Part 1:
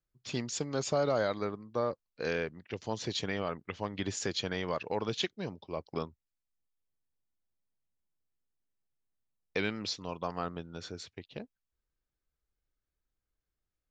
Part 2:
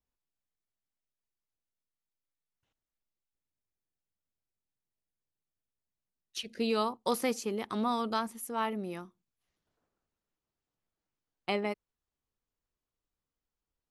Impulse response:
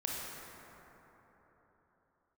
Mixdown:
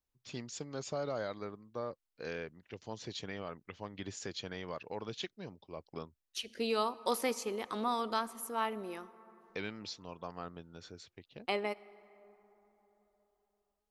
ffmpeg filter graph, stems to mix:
-filter_complex "[0:a]volume=-8dB[a];[1:a]equalizer=f=150:w=1.7:g=-14.5,volume=-2dB,asplit=2[b][c];[c]volume=-19.5dB[d];[2:a]atrim=start_sample=2205[e];[d][e]afir=irnorm=-1:irlink=0[f];[a][b][f]amix=inputs=3:normalize=0"

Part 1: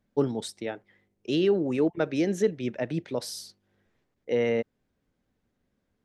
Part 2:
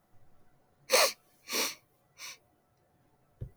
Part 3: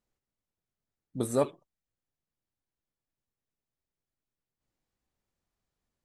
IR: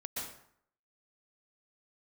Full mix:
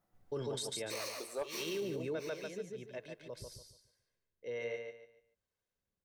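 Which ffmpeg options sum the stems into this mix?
-filter_complex "[0:a]highshelf=f=2.4k:g=8,aecho=1:1:1.9:0.54,acrossover=split=410[a][b];[a]aeval=exprs='val(0)*(1-0.7/2+0.7/2*cos(2*PI*1.2*n/s))':c=same[c];[b]aeval=exprs='val(0)*(1-0.7/2-0.7/2*cos(2*PI*1.2*n/s))':c=same[d];[c][d]amix=inputs=2:normalize=0,adelay=150,volume=-2.5dB,afade=t=out:st=2.14:d=0.2:silence=0.237137,asplit=2[e][f];[f]volume=-5.5dB[g];[1:a]alimiter=limit=-19dB:level=0:latency=1:release=302,volume=-9.5dB,asplit=2[h][i];[i]volume=-5.5dB[j];[2:a]highpass=f=390:w=0.5412,highpass=f=390:w=1.3066,asoftclip=type=hard:threshold=-20dB,volume=-11dB,asplit=2[k][l];[l]apad=whole_len=273481[m];[e][m]sidechaincompress=threshold=-56dB:ratio=8:attack=16:release=937[n];[g][j]amix=inputs=2:normalize=0,aecho=0:1:144|288|432|576:1|0.29|0.0841|0.0244[o];[n][h][k][o]amix=inputs=4:normalize=0,alimiter=level_in=6.5dB:limit=-24dB:level=0:latency=1:release=22,volume=-6.5dB"

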